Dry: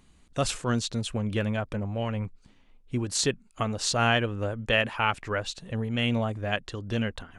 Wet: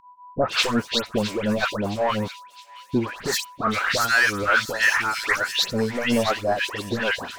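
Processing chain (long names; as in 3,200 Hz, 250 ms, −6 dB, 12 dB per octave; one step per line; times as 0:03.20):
meter weighting curve A
downward expander −55 dBFS
0:03.20–0:05.43: flat-topped bell 1,700 Hz +12 dB 1.1 octaves
low-pass that shuts in the quiet parts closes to 1,400 Hz, open at −15.5 dBFS
downward compressor 5 to 1, threshold −23 dBFS, peak gain reduction 12 dB
brickwall limiter −18.5 dBFS, peak gain reduction 7.5 dB
leveller curve on the samples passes 3
all-pass dispersion highs, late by 140 ms, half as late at 2,000 Hz
steady tone 990 Hz −48 dBFS
all-pass phaser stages 2, 2.8 Hz, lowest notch 110–3,500 Hz
delay with a high-pass on its return 664 ms, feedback 43%, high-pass 3,300 Hz, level −9 dB
level +6.5 dB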